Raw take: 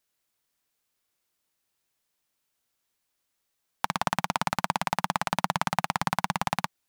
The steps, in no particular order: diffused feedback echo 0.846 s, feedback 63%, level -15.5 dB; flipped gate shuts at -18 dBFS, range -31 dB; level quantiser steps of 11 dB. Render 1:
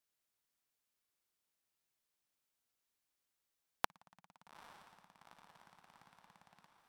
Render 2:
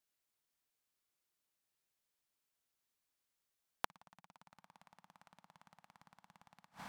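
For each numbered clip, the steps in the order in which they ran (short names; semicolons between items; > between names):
flipped gate > level quantiser > diffused feedback echo; level quantiser > diffused feedback echo > flipped gate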